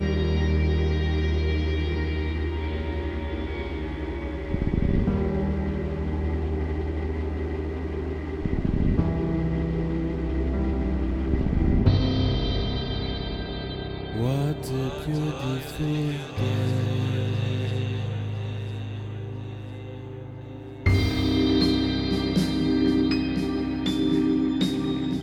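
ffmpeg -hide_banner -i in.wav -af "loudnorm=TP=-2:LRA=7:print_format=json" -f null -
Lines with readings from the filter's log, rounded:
"input_i" : "-26.0",
"input_tp" : "-7.5",
"input_lra" : "4.5",
"input_thresh" : "-36.2",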